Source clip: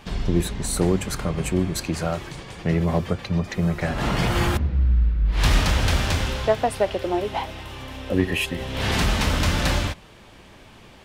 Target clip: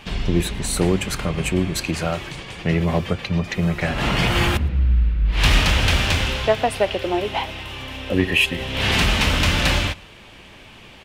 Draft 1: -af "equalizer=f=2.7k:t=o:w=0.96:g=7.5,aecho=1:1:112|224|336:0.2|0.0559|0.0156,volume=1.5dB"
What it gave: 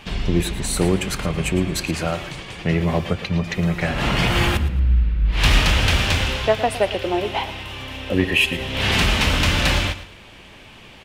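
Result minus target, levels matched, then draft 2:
echo-to-direct +11.5 dB
-af "equalizer=f=2.7k:t=o:w=0.96:g=7.5,aecho=1:1:112|224:0.0531|0.0149,volume=1.5dB"

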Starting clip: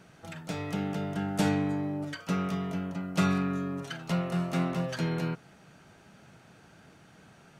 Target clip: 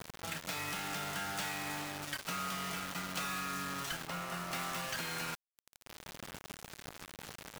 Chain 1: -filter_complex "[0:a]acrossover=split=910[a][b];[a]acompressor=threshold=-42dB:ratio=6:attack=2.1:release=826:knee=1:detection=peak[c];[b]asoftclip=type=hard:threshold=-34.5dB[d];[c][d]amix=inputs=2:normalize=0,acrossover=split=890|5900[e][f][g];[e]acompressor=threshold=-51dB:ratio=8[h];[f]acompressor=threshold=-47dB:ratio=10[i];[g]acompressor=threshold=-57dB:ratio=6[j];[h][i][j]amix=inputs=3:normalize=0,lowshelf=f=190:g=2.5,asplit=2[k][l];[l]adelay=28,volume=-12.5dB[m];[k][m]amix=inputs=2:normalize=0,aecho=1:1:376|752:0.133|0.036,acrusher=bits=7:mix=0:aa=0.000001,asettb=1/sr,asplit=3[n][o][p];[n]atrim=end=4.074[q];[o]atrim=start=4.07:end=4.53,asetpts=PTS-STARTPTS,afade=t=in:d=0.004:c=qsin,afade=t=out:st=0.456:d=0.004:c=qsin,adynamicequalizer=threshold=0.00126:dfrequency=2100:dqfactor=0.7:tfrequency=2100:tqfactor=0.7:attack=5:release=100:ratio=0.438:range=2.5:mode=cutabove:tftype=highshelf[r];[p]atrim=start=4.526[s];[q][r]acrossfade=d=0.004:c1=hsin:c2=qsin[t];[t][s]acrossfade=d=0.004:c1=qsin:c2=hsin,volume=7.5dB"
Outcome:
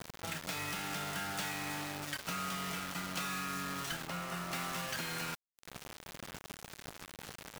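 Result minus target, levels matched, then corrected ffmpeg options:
compressor: peak gain reduction -5.5 dB
-filter_complex "[0:a]acrossover=split=910[a][b];[a]acompressor=threshold=-48.5dB:ratio=6:attack=2.1:release=826:knee=1:detection=peak[c];[b]asoftclip=type=hard:threshold=-34.5dB[d];[c][d]amix=inputs=2:normalize=0,acrossover=split=890|5900[e][f][g];[e]acompressor=threshold=-51dB:ratio=8[h];[f]acompressor=threshold=-47dB:ratio=10[i];[g]acompressor=threshold=-57dB:ratio=6[j];[h][i][j]amix=inputs=3:normalize=0,lowshelf=f=190:g=2.5,asplit=2[k][l];[l]adelay=28,volume=-12.5dB[m];[k][m]amix=inputs=2:normalize=0,aecho=1:1:376|752:0.133|0.036,acrusher=bits=7:mix=0:aa=0.000001,asettb=1/sr,asplit=3[n][o][p];[n]atrim=end=4.074[q];[o]atrim=start=4.07:end=4.53,asetpts=PTS-STARTPTS,afade=t=in:d=0.004:c=qsin,afade=t=out:st=0.456:d=0.004:c=qsin,adynamicequalizer=threshold=0.00126:dfrequency=2100:dqfactor=0.7:tfrequency=2100:tqfactor=0.7:attack=5:release=100:ratio=0.438:range=2.5:mode=cutabove:tftype=highshelf[r];[p]atrim=start=4.526[s];[q][r]acrossfade=d=0.004:c1=hsin:c2=qsin[t];[t][s]acrossfade=d=0.004:c1=qsin:c2=hsin,volume=7.5dB"

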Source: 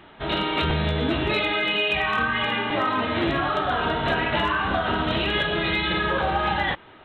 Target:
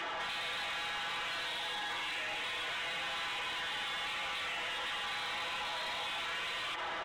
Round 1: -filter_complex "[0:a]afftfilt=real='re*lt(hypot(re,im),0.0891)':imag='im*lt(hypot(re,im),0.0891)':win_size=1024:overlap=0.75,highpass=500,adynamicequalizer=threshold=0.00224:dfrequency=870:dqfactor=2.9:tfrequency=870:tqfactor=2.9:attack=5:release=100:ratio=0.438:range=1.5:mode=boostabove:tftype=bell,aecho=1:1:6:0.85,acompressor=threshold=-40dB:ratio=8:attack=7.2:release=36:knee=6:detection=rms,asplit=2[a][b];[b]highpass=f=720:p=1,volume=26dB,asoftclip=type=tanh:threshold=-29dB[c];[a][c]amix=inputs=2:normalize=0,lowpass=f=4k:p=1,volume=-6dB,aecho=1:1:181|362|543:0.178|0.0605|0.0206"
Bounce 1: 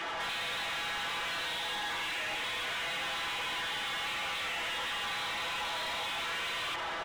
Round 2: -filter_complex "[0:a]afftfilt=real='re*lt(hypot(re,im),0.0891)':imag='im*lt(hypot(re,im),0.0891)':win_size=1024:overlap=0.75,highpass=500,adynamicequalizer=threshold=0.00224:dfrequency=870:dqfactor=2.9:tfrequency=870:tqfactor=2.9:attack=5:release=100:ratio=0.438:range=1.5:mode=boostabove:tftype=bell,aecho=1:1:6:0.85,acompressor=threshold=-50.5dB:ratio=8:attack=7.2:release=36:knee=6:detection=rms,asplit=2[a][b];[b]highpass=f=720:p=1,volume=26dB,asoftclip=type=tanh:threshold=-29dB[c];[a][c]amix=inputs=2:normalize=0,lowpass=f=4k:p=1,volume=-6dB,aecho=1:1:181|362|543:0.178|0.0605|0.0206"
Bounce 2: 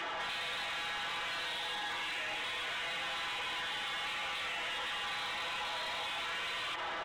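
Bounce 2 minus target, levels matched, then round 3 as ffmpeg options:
echo 69 ms early
-filter_complex "[0:a]afftfilt=real='re*lt(hypot(re,im),0.0891)':imag='im*lt(hypot(re,im),0.0891)':win_size=1024:overlap=0.75,highpass=500,adynamicequalizer=threshold=0.00224:dfrequency=870:dqfactor=2.9:tfrequency=870:tqfactor=2.9:attack=5:release=100:ratio=0.438:range=1.5:mode=boostabove:tftype=bell,aecho=1:1:6:0.85,acompressor=threshold=-50.5dB:ratio=8:attack=7.2:release=36:knee=6:detection=rms,asplit=2[a][b];[b]highpass=f=720:p=1,volume=26dB,asoftclip=type=tanh:threshold=-29dB[c];[a][c]amix=inputs=2:normalize=0,lowpass=f=4k:p=1,volume=-6dB,aecho=1:1:250|500|750:0.178|0.0605|0.0206"

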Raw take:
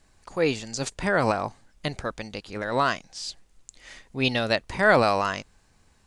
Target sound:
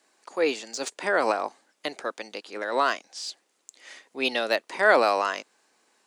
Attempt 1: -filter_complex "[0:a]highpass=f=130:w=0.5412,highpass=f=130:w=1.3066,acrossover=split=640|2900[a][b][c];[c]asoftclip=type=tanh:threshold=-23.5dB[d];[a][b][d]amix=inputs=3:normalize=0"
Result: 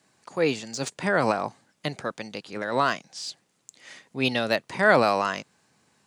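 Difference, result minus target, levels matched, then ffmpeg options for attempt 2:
125 Hz band +19.5 dB
-filter_complex "[0:a]highpass=f=300:w=0.5412,highpass=f=300:w=1.3066,acrossover=split=640|2900[a][b][c];[c]asoftclip=type=tanh:threshold=-23.5dB[d];[a][b][d]amix=inputs=3:normalize=0"

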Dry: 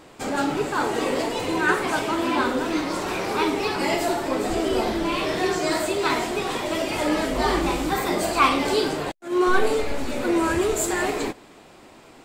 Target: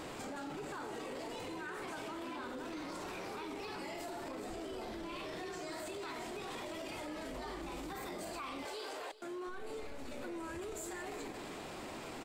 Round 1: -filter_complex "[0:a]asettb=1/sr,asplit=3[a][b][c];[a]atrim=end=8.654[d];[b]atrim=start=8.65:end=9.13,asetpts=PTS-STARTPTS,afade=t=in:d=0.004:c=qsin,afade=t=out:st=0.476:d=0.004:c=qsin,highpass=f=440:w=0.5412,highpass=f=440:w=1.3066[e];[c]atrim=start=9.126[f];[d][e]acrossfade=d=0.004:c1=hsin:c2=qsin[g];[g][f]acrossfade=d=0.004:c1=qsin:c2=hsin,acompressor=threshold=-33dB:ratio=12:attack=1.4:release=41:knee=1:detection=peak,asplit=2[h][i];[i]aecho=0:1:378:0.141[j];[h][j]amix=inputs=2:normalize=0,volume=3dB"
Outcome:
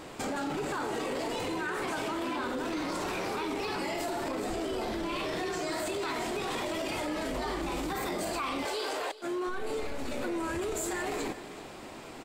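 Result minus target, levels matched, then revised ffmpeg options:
compressor: peak gain reduction -10 dB
-filter_complex "[0:a]asettb=1/sr,asplit=3[a][b][c];[a]atrim=end=8.654[d];[b]atrim=start=8.65:end=9.13,asetpts=PTS-STARTPTS,afade=t=in:d=0.004:c=qsin,afade=t=out:st=0.476:d=0.004:c=qsin,highpass=f=440:w=0.5412,highpass=f=440:w=1.3066[e];[c]atrim=start=9.126[f];[d][e]acrossfade=d=0.004:c1=hsin:c2=qsin[g];[g][f]acrossfade=d=0.004:c1=qsin:c2=hsin,acompressor=threshold=-44dB:ratio=12:attack=1.4:release=41:knee=1:detection=peak,asplit=2[h][i];[i]aecho=0:1:378:0.141[j];[h][j]amix=inputs=2:normalize=0,volume=3dB"

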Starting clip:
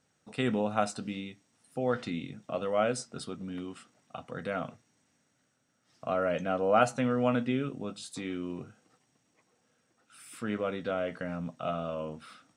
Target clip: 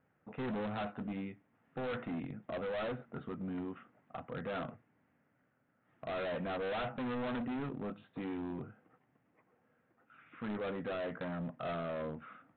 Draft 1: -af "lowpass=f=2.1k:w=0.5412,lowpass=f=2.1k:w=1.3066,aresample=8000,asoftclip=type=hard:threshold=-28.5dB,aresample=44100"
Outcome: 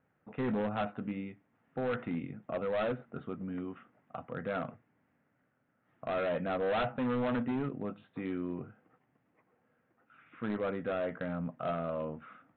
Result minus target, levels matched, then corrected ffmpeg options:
hard clip: distortion -4 dB
-af "lowpass=f=2.1k:w=0.5412,lowpass=f=2.1k:w=1.3066,aresample=8000,asoftclip=type=hard:threshold=-35.5dB,aresample=44100"

